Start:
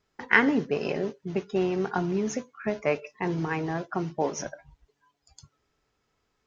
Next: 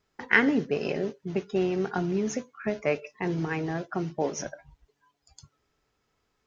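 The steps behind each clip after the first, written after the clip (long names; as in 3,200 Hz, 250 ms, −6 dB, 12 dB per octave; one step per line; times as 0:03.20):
dynamic equaliser 1,000 Hz, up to −6 dB, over −43 dBFS, Q 2.3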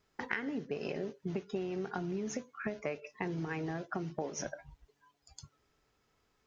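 downward compressor 12 to 1, threshold −33 dBFS, peak gain reduction 19 dB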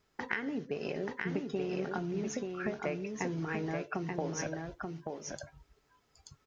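single-tap delay 882 ms −4 dB
level +1 dB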